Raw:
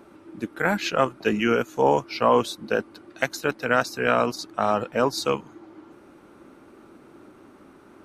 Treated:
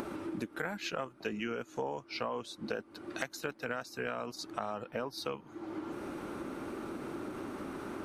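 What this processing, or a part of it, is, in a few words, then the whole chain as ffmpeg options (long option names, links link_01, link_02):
upward and downward compression: -filter_complex "[0:a]asettb=1/sr,asplit=3[link_01][link_02][link_03];[link_01]atrim=end=1.264[link_04];[link_02]atrim=start=1.26:end=2.72,asetpts=PTS-STARTPTS,afade=type=in:duration=0.004:curve=qsin,afade=type=out:start_time=1.456:duration=0.004:curve=qsin,lowpass=9700[link_05];[link_03]atrim=start=2.716[link_06];[link_04][link_05]acrossfade=duration=0.004:curve1=hsin:curve2=qsin[link_07];[link_07][link_06]acrossfade=duration=0.004:curve1=qsin:curve2=hsin,asettb=1/sr,asplit=3[link_08][link_09][link_10];[link_08]atrim=end=4.844[link_11];[link_09]atrim=start=4.84:end=5.48,asetpts=PTS-STARTPTS,afade=type=in:duration=0.004:curve=qsin,afade=type=out:start_time=0.636:duration=0.004:curve=qsin,equalizer=frequency=7200:width_type=o:width=0.29:gain=-15[link_12];[link_10]atrim=start=5.476[link_13];[link_11][link_12]acrossfade=duration=0.004:curve1=hsin:curve2=qsin[link_14];[link_14][link_13]acrossfade=duration=0.004:curve1=qsin:curve2=hsin,acompressor=mode=upward:threshold=-25dB:ratio=2.5,acompressor=threshold=-30dB:ratio=8,volume=-3.5dB"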